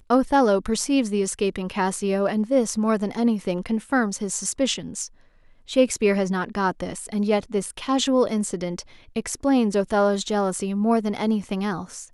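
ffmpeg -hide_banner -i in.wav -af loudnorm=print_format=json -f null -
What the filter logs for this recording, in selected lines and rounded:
"input_i" : "-23.3",
"input_tp" : "-5.9",
"input_lra" : "1.8",
"input_thresh" : "-33.5",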